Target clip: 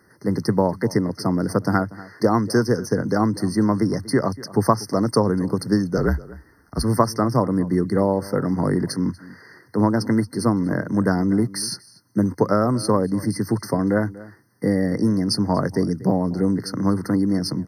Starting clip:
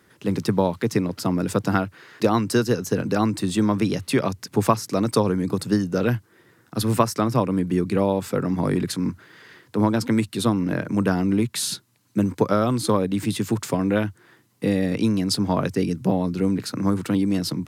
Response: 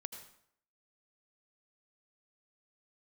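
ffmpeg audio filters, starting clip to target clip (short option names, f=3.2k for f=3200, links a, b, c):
-filter_complex "[0:a]asplit=2[a][b];[b]adelay=239.1,volume=-19dB,highshelf=f=4k:g=-5.38[c];[a][c]amix=inputs=2:normalize=0,asettb=1/sr,asplit=3[d][e][f];[d]atrim=end=5.974[g];[e]atrim=start=5.97:end=6.84,asetpts=PTS-STARTPTS,afade=t=in:d=0.004:c=qsin,afade=t=out:st=0.866:d=0.004:c=qsin,afreqshift=-48[h];[f]atrim=start=6.836[i];[g][h]acrossfade=d=0.004:c1=hsin:c2=qsin[j];[j][i]acrossfade=d=0.004:c1=qsin:c2=hsin,afftfilt=real='re*eq(mod(floor(b*sr/1024/2100),2),0)':imag='im*eq(mod(floor(b*sr/1024/2100),2),0)':win_size=1024:overlap=0.75,volume=1.5dB"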